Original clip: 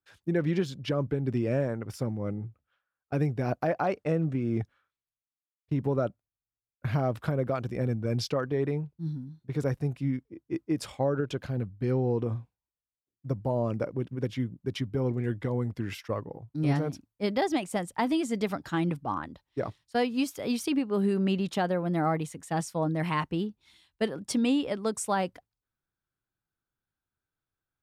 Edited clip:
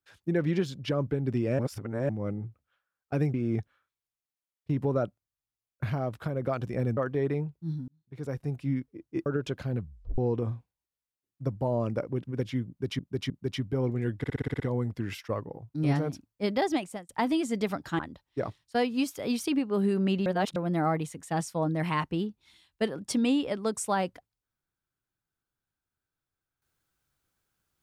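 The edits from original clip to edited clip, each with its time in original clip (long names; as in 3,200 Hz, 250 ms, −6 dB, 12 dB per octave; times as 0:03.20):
0:01.59–0:02.09: reverse
0:03.34–0:04.36: remove
0:06.92–0:07.44: clip gain −3.5 dB
0:07.99–0:08.34: remove
0:09.25–0:10.08: fade in linear
0:10.63–0:11.10: remove
0:11.64: tape stop 0.38 s
0:14.52–0:14.83: repeat, 3 plays
0:15.40: stutter 0.06 s, 8 plays
0:17.55–0:17.89: fade out
0:18.79–0:19.19: remove
0:21.46–0:21.76: reverse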